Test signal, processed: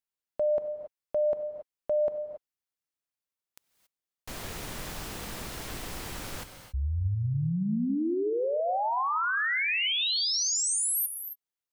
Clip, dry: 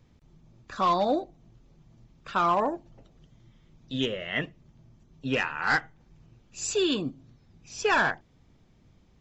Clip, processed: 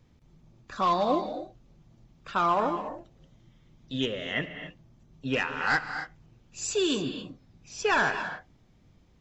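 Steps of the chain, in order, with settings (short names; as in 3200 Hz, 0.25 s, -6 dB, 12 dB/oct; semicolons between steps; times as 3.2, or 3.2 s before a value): non-linear reverb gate 0.3 s rising, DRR 8.5 dB; gain -1 dB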